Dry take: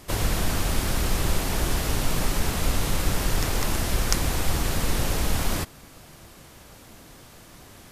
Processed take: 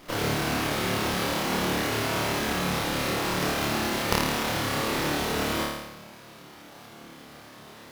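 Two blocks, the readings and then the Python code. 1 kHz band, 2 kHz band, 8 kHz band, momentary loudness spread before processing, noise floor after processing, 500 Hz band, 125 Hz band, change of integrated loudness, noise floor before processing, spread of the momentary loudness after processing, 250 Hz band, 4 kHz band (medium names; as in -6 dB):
+4.0 dB, +3.5 dB, -4.5 dB, 2 LU, -48 dBFS, +3.5 dB, -5.0 dB, 0.0 dB, -49 dBFS, 20 LU, +2.0 dB, +1.5 dB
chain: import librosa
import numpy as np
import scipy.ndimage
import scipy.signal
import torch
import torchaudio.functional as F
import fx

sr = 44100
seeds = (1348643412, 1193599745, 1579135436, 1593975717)

p1 = scipy.signal.sosfilt(scipy.signal.butter(2, 170.0, 'highpass', fs=sr, output='sos'), x)
p2 = p1 + fx.room_flutter(p1, sr, wall_m=4.7, rt60_s=0.97, dry=0)
p3 = fx.running_max(p2, sr, window=5)
y = F.gain(torch.from_numpy(p3), -1.5).numpy()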